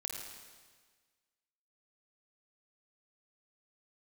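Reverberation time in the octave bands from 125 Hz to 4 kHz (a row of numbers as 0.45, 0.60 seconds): 1.6, 1.5, 1.5, 1.5, 1.5, 1.5 seconds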